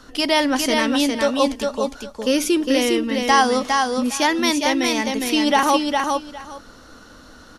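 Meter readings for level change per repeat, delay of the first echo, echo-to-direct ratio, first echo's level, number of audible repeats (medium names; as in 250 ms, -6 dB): -15.0 dB, 408 ms, -4.0 dB, -4.0 dB, 2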